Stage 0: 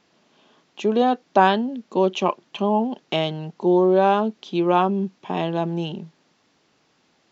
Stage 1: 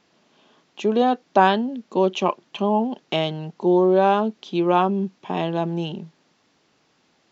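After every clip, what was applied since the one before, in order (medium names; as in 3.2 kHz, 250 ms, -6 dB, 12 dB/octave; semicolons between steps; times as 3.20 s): no audible change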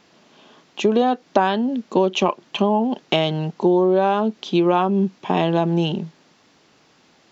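compression 6:1, threshold -21 dBFS, peak gain reduction 11 dB; trim +7.5 dB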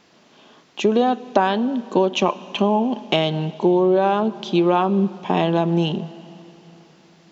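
reverberation RT60 3.6 s, pre-delay 26 ms, DRR 17 dB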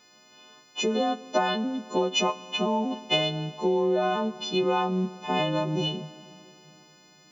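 partials quantised in pitch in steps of 3 st; trim -7.5 dB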